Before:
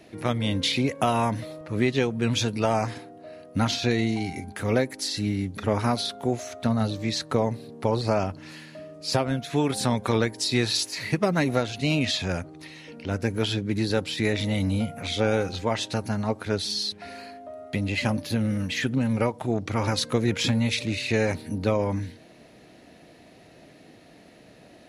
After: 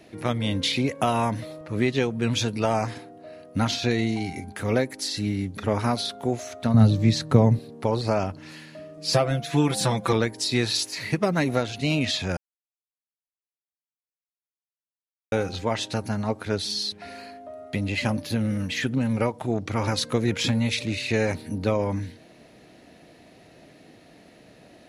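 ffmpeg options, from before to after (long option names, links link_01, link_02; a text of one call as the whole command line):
ffmpeg -i in.wav -filter_complex "[0:a]asettb=1/sr,asplit=3[link_01][link_02][link_03];[link_01]atrim=end=6.744[link_04];[link_02]atrim=start=6.74:end=7.59,asetpts=PTS-STARTPTS,afade=type=in:duration=0.004:curve=qsin,afade=type=out:start_time=0.846:duration=0.004:curve=qsin,equalizer=frequency=130:width_type=o:width=2.1:gain=12.5[link_05];[link_03]atrim=start=7.586[link_06];[link_04][link_05]acrossfade=duration=0.004:curve1=hsin:curve2=qsin[link_07];[link_07][link_06]acrossfade=duration=0.004:curve1=qsin:curve2=hsin,asettb=1/sr,asplit=3[link_08][link_09][link_10];[link_08]atrim=end=8.974[link_11];[link_09]atrim=start=8.97:end=10.13,asetpts=PTS-STARTPTS,afade=type=in:duration=0.004:curve=qsin,afade=type=out:start_time=1.156:duration=0.004:curve=qsin,aecho=1:1:6:0.96,atrim=end_sample=51156[link_12];[link_10]atrim=start=10.126[link_13];[link_11][link_12]acrossfade=duration=0.004:curve1=hsin:curve2=qsin[link_14];[link_14][link_13]acrossfade=duration=0.004:curve1=qsin:curve2=hsin,asplit=3[link_15][link_16][link_17];[link_15]atrim=end=12.37,asetpts=PTS-STARTPTS,afade=type=out:start_time=12.366:duration=0.004:curve=hsin[link_18];[link_16]atrim=start=12.37:end=15.32,asetpts=PTS-STARTPTS,volume=0[link_19];[link_17]atrim=start=15.32,asetpts=PTS-STARTPTS,afade=type=in:duration=0.004:curve=hsin[link_20];[link_18][link_19][link_20]concat=n=3:v=0:a=1" out.wav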